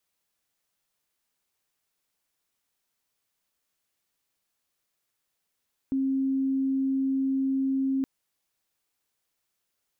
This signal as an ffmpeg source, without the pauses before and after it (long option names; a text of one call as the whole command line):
ffmpeg -f lavfi -i "aevalsrc='0.0708*sin(2*PI*268*t)':duration=2.12:sample_rate=44100" out.wav